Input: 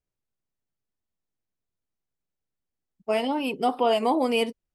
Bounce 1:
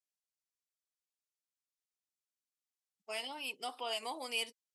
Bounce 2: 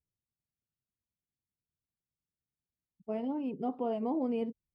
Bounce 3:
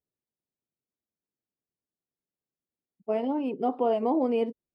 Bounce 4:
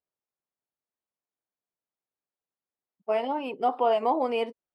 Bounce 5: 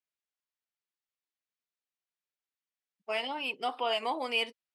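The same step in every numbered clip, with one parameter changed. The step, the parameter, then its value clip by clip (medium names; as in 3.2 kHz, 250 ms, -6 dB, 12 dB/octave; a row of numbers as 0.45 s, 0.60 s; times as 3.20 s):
band-pass filter, frequency: 7.1 kHz, 110 Hz, 320 Hz, 830 Hz, 2.6 kHz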